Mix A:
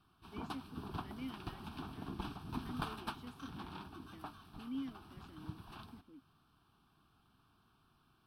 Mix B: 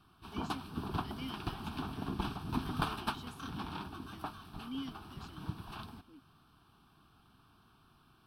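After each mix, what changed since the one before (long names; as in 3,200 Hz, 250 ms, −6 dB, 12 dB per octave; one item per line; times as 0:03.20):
speech: add flat-topped bell 6,100 Hz +13 dB 2.5 octaves
background +6.5 dB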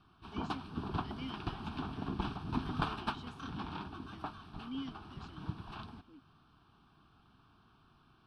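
master: add high-frequency loss of the air 91 metres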